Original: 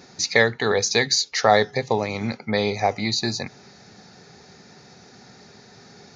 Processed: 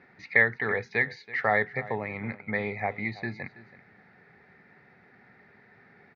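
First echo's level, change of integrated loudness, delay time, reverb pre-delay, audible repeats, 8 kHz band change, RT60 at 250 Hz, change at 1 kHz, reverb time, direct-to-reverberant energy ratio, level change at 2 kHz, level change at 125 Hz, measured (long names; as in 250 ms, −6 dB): −18.0 dB, −6.5 dB, 328 ms, no reverb audible, 1, below −35 dB, no reverb audible, −9.5 dB, no reverb audible, no reverb audible, −1.0 dB, −7.5 dB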